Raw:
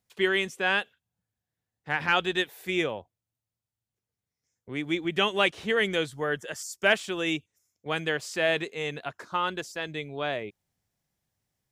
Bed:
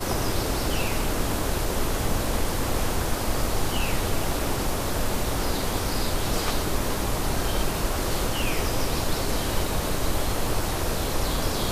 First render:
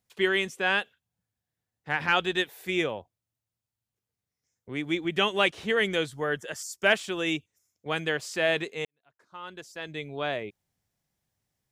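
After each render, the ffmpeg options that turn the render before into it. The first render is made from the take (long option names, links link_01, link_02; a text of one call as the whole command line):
ffmpeg -i in.wav -filter_complex "[0:a]asplit=2[link_01][link_02];[link_01]atrim=end=8.85,asetpts=PTS-STARTPTS,afade=type=out:start_time=8.846:duration=0.004:curve=hsin[link_03];[link_02]atrim=start=8.85,asetpts=PTS-STARTPTS,afade=type=in:duration=1.23:curve=qua[link_04];[link_03][link_04]concat=n=2:v=0:a=1" out.wav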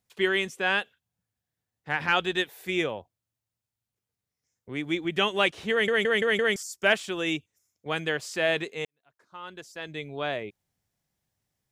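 ffmpeg -i in.wav -filter_complex "[0:a]asplit=6[link_01][link_02][link_03][link_04][link_05][link_06];[link_01]atrim=end=5.882[link_07];[link_02]atrim=start=5.708:end=5.882[link_08];[link_03]atrim=start=5.708:end=5.882[link_09];[link_04]atrim=start=5.708:end=5.882[link_10];[link_05]atrim=start=5.708:end=5.882[link_11];[link_06]atrim=start=6.558[link_12];[link_07][link_08]acrossfade=duration=0.004:curve1=hsin:curve2=hsin[link_13];[link_13][link_09]acrossfade=duration=0.004:curve1=hsin:curve2=hsin[link_14];[link_14][link_10]acrossfade=duration=0.004:curve1=hsin:curve2=hsin[link_15];[link_15][link_11]acrossfade=duration=0.004:curve1=hsin:curve2=hsin[link_16];[link_16][link_12]acrossfade=duration=0.004:curve1=hsin:curve2=hsin" out.wav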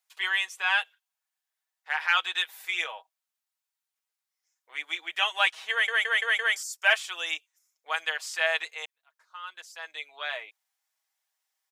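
ffmpeg -i in.wav -af "highpass=frequency=810:width=0.5412,highpass=frequency=810:width=1.3066,aecho=1:1:6.3:0.67" out.wav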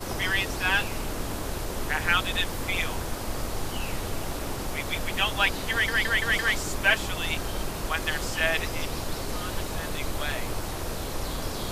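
ffmpeg -i in.wav -i bed.wav -filter_complex "[1:a]volume=-6dB[link_01];[0:a][link_01]amix=inputs=2:normalize=0" out.wav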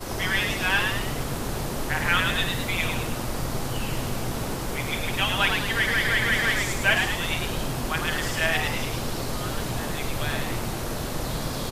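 ffmpeg -i in.wav -filter_complex "[0:a]asplit=2[link_01][link_02];[link_02]adelay=50,volume=-11dB[link_03];[link_01][link_03]amix=inputs=2:normalize=0,asplit=2[link_04][link_05];[link_05]asplit=6[link_06][link_07][link_08][link_09][link_10][link_11];[link_06]adelay=106,afreqshift=110,volume=-4.5dB[link_12];[link_07]adelay=212,afreqshift=220,volume=-11.1dB[link_13];[link_08]adelay=318,afreqshift=330,volume=-17.6dB[link_14];[link_09]adelay=424,afreqshift=440,volume=-24.2dB[link_15];[link_10]adelay=530,afreqshift=550,volume=-30.7dB[link_16];[link_11]adelay=636,afreqshift=660,volume=-37.3dB[link_17];[link_12][link_13][link_14][link_15][link_16][link_17]amix=inputs=6:normalize=0[link_18];[link_04][link_18]amix=inputs=2:normalize=0" out.wav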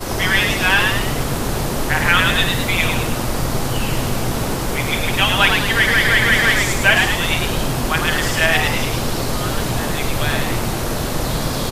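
ffmpeg -i in.wav -af "volume=8.5dB,alimiter=limit=-1dB:level=0:latency=1" out.wav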